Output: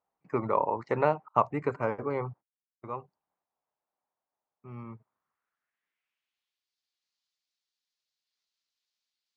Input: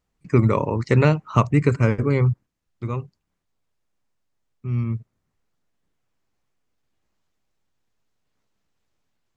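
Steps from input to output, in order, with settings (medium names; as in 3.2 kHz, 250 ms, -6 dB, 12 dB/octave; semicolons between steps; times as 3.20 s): 1.28–2.94 s: gate -30 dBFS, range -35 dB; band-pass sweep 810 Hz -> 4.4 kHz, 4.86–6.72 s; trim +2.5 dB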